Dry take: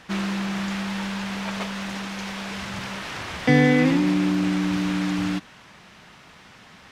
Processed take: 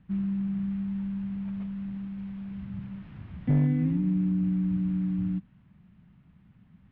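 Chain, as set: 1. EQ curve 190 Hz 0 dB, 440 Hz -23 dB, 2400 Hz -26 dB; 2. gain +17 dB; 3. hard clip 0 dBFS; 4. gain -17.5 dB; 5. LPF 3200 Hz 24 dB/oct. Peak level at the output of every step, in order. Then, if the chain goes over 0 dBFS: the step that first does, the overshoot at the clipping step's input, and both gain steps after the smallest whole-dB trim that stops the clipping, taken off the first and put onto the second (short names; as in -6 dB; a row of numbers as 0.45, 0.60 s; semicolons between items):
-12.5, +4.5, 0.0, -17.5, -17.5 dBFS; step 2, 4.5 dB; step 2 +12 dB, step 4 -12.5 dB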